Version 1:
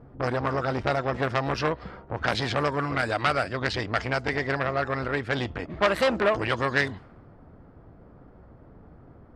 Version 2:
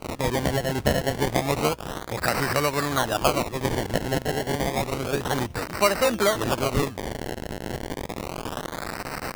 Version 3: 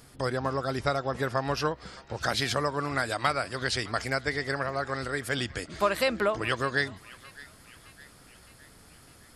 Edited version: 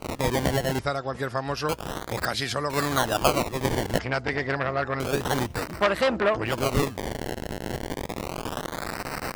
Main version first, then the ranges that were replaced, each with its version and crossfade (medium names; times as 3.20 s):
2
0.79–1.69 s: from 3
2.25–2.70 s: from 3
3.99–5.00 s: from 1
5.73–6.54 s: from 1, crossfade 0.24 s